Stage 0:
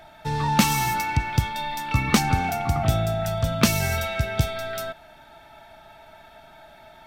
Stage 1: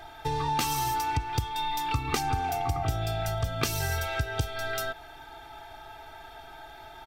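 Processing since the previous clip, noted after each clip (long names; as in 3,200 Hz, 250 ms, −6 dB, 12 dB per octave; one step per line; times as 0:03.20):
gain on a spectral selection 0:03.01–0:03.24, 2,200–5,400 Hz +6 dB
comb filter 2.5 ms, depth 98%
downward compressor 3 to 1, threshold −28 dBFS, peak gain reduction 12 dB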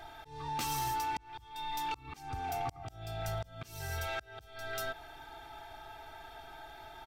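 volume swells 468 ms
soft clipping −25 dBFS, distortion −18 dB
level −3.5 dB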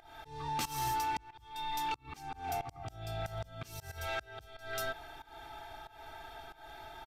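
volume swells 180 ms
fake sidechain pumping 92 BPM, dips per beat 1, −19 dB, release 256 ms
downsampling to 32,000 Hz
level +1 dB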